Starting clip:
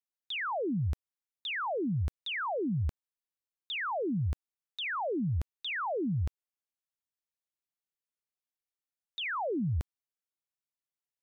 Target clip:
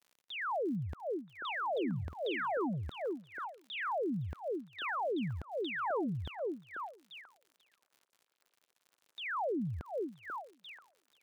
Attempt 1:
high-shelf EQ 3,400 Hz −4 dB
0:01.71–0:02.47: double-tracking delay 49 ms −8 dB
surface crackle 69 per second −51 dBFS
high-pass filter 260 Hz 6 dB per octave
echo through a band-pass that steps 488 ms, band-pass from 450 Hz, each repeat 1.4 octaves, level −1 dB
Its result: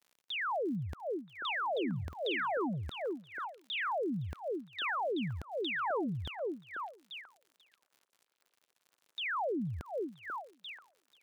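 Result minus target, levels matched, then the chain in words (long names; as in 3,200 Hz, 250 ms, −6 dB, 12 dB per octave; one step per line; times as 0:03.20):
4,000 Hz band +4.5 dB
high-shelf EQ 3,400 Hz −15.5 dB
0:01.71–0:02.47: double-tracking delay 49 ms −8 dB
surface crackle 69 per second −51 dBFS
high-pass filter 260 Hz 6 dB per octave
echo through a band-pass that steps 488 ms, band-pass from 450 Hz, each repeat 1.4 octaves, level −1 dB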